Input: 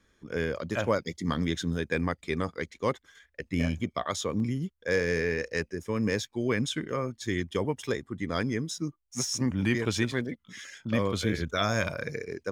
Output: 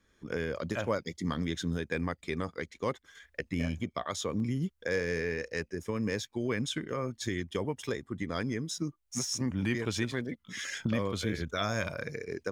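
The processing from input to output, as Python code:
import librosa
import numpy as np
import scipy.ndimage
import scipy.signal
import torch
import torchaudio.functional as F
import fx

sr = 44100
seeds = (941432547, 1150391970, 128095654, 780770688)

y = fx.recorder_agc(x, sr, target_db=-19.0, rise_db_per_s=24.0, max_gain_db=30)
y = y * 10.0 ** (-4.5 / 20.0)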